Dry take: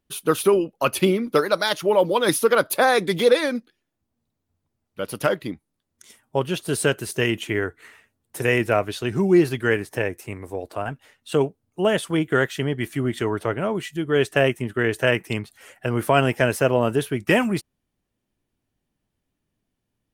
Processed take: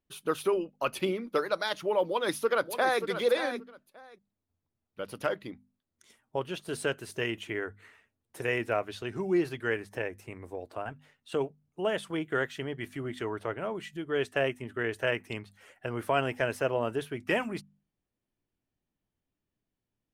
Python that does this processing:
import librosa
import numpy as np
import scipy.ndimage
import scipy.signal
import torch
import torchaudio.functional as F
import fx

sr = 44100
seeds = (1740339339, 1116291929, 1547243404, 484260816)

y = fx.echo_throw(x, sr, start_s=2.05, length_s=0.97, ms=580, feedback_pct=15, wet_db=-9.5)
y = fx.high_shelf(y, sr, hz=6600.0, db=-9.5)
y = fx.hum_notches(y, sr, base_hz=50, count=5)
y = fx.dynamic_eq(y, sr, hz=160.0, q=0.72, threshold_db=-35.0, ratio=4.0, max_db=-6)
y = y * 10.0 ** (-8.0 / 20.0)